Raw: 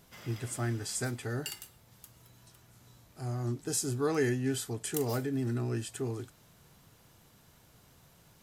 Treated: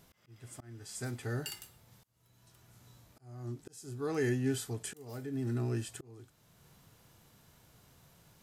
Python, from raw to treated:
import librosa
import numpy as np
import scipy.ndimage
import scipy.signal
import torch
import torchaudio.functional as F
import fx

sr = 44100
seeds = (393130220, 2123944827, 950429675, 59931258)

y = fx.auto_swell(x, sr, attack_ms=675.0)
y = fx.hpss(y, sr, part='percussive', gain_db=-4)